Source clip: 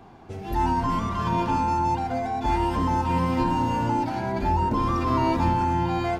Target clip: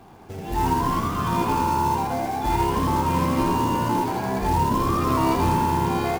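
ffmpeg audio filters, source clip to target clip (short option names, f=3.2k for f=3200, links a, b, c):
-filter_complex "[0:a]acrusher=bits=4:mode=log:mix=0:aa=0.000001,asplit=6[a][b][c][d][e][f];[b]adelay=81,afreqshift=67,volume=-4.5dB[g];[c]adelay=162,afreqshift=134,volume=-12.5dB[h];[d]adelay=243,afreqshift=201,volume=-20.4dB[i];[e]adelay=324,afreqshift=268,volume=-28.4dB[j];[f]adelay=405,afreqshift=335,volume=-36.3dB[k];[a][g][h][i][j][k]amix=inputs=6:normalize=0"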